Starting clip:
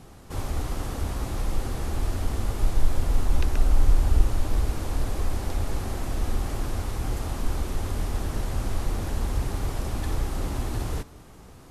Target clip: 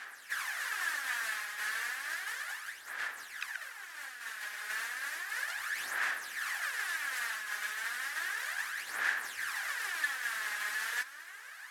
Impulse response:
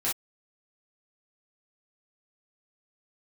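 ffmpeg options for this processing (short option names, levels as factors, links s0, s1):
-filter_complex "[0:a]areverse,acompressor=threshold=0.0501:ratio=6,areverse,aphaser=in_gain=1:out_gain=1:delay=4.8:decay=0.62:speed=0.33:type=sinusoidal,asplit=3[s0][s1][s2];[s1]asetrate=55563,aresample=44100,atempo=0.793701,volume=0.316[s3];[s2]asetrate=58866,aresample=44100,atempo=0.749154,volume=0.141[s4];[s0][s3][s4]amix=inputs=3:normalize=0,highpass=f=1700:t=q:w=6.9"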